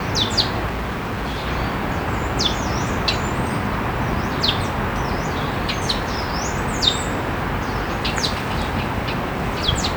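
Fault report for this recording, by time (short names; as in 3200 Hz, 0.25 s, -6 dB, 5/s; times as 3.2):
0.67–1.47 clipped -21.5 dBFS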